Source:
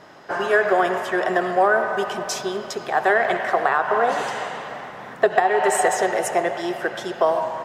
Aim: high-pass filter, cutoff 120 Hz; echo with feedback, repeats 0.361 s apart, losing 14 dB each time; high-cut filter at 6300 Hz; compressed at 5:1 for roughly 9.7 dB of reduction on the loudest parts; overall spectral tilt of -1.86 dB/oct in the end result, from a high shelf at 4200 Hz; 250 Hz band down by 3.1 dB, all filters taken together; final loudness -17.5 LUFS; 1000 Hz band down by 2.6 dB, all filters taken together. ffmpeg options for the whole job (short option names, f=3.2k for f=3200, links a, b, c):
-af "highpass=120,lowpass=6.3k,equalizer=f=250:t=o:g=-5.5,equalizer=f=1k:t=o:g=-4,highshelf=f=4.2k:g=9,acompressor=threshold=-25dB:ratio=5,aecho=1:1:361|722:0.2|0.0399,volume=11.5dB"